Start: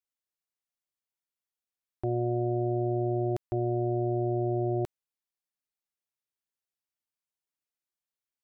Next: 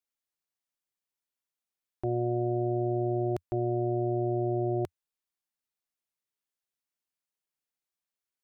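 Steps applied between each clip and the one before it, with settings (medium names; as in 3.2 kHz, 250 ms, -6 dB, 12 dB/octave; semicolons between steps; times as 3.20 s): peaking EQ 89 Hz -13 dB 0.24 oct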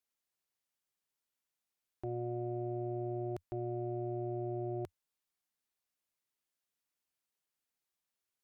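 peak limiter -31.5 dBFS, peak gain reduction 10.5 dB; Chebyshev shaper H 5 -44 dB, 6 -44 dB, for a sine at -31 dBFS; trim +1 dB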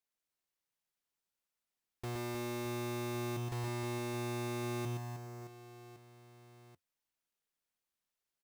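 square wave that keeps the level; reverse bouncing-ball echo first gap 120 ms, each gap 1.6×, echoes 5; trim -6 dB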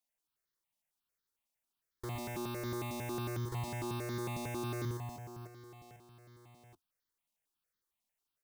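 stepped phaser 11 Hz 410–2600 Hz; trim +3 dB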